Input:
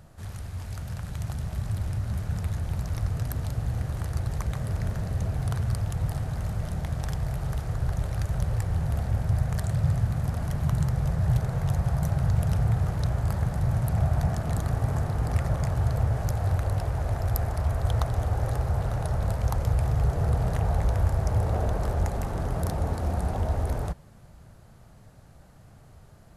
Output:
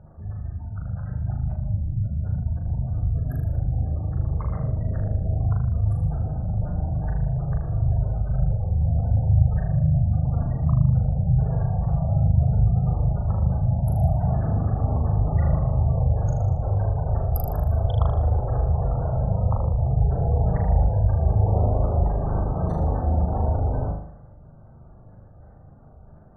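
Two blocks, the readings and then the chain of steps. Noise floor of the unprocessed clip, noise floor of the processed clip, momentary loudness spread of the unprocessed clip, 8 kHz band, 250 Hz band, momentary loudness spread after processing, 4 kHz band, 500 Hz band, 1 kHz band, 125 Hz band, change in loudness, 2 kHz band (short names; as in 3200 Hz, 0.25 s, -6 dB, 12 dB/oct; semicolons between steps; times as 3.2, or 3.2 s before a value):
-51 dBFS, -47 dBFS, 6 LU, under -15 dB, +4.5 dB, 6 LU, under -10 dB, +3.5 dB, +2.5 dB, +4.5 dB, +4.5 dB, n/a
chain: spectral gate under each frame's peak -25 dB strong; low-pass opened by the level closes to 1200 Hz; flutter echo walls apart 6.7 m, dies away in 0.66 s; gain +2 dB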